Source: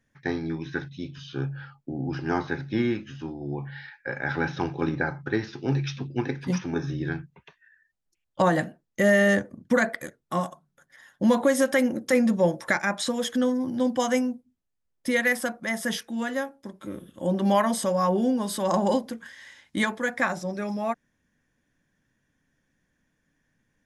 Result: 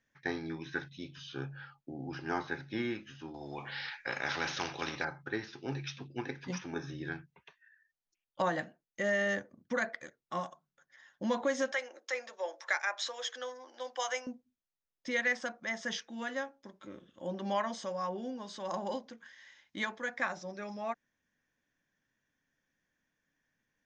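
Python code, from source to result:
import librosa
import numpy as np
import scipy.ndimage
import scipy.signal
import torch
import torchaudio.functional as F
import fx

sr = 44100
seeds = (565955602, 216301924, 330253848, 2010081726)

y = fx.spectral_comp(x, sr, ratio=2.0, at=(3.34, 5.05))
y = fx.bessel_highpass(y, sr, hz=680.0, order=6, at=(11.72, 14.27))
y = fx.rider(y, sr, range_db=5, speed_s=2.0)
y = scipy.signal.sosfilt(scipy.signal.ellip(4, 1.0, 50, 6500.0, 'lowpass', fs=sr, output='sos'), y)
y = fx.low_shelf(y, sr, hz=330.0, db=-9.5)
y = y * librosa.db_to_amplitude(-7.5)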